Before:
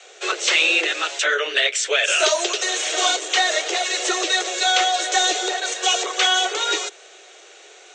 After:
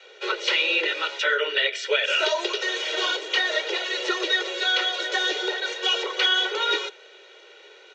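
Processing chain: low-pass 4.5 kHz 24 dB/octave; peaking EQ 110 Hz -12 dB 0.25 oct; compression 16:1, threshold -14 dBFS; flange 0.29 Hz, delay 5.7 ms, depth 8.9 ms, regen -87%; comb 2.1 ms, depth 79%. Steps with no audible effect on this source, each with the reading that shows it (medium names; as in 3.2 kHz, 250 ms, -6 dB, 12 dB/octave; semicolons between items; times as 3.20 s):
peaking EQ 110 Hz: input has nothing below 300 Hz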